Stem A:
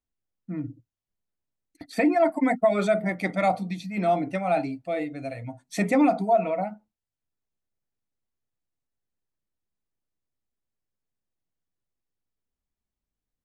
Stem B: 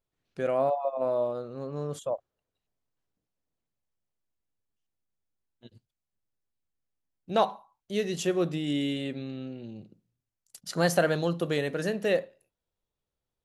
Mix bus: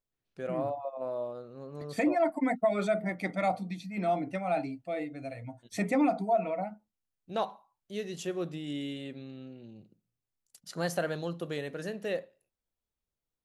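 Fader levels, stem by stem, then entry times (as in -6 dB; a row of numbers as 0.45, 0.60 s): -6.0, -7.5 dB; 0.00, 0.00 s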